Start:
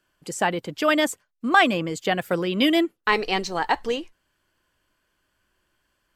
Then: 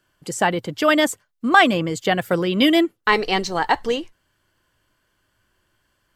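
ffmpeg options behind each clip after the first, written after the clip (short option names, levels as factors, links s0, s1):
-af "equalizer=f=110:t=o:w=0.66:g=7,bandreject=f=2500:w=17,volume=1.5"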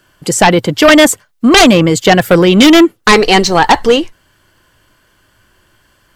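-af "aeval=exprs='0.891*sin(PI/2*3.55*val(0)/0.891)':c=same"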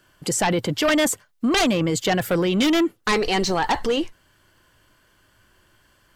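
-af "alimiter=limit=0.376:level=0:latency=1:release=16,volume=0.473"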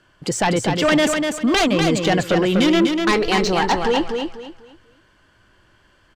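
-filter_complex "[0:a]adynamicsmooth=sensitivity=1:basefreq=6200,asplit=2[s0][s1];[s1]aecho=0:1:246|492|738|984:0.562|0.157|0.0441|0.0123[s2];[s0][s2]amix=inputs=2:normalize=0,volume=1.33"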